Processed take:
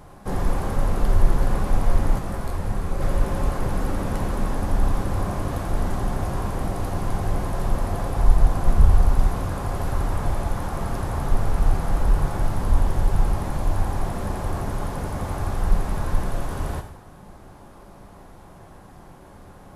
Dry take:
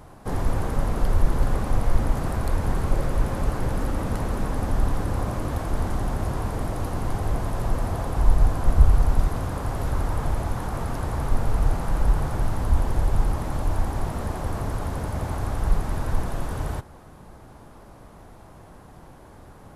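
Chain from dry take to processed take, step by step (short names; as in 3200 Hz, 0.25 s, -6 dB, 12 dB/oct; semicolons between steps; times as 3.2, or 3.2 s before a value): non-linear reverb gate 0.24 s falling, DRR 4.5 dB; 2.18–3 detuned doubles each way 45 cents -> 34 cents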